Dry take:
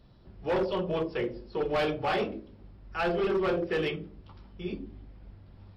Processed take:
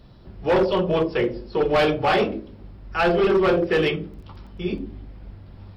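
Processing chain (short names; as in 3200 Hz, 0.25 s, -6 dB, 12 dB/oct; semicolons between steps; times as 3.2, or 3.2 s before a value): 3.5–4.9 crackle 16/s -52 dBFS; gain +9 dB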